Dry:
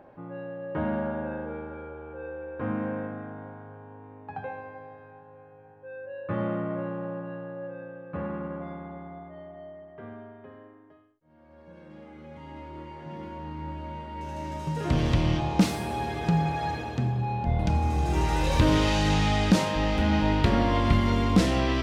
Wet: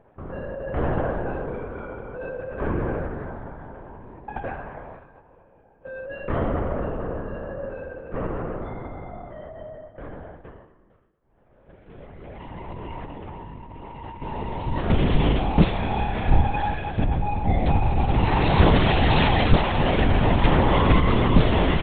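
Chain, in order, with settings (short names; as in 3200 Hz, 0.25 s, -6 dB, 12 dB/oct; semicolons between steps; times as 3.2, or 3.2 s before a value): LPC vocoder at 8 kHz whisper; 12.68–14.22 negative-ratio compressor -42 dBFS, ratio -1; 15.72–16.41 flutter echo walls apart 5.4 m, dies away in 0.41 s; gate -47 dBFS, range -9 dB; feedback echo 0.231 s, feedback 39%, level -19 dB; gain +5 dB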